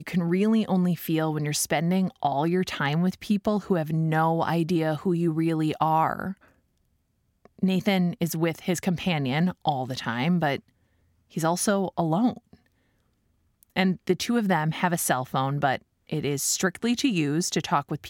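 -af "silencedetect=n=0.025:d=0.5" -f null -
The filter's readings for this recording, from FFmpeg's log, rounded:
silence_start: 6.32
silence_end: 7.63 | silence_duration: 1.31
silence_start: 10.56
silence_end: 11.37 | silence_duration: 0.80
silence_start: 12.37
silence_end: 13.63 | silence_duration: 1.26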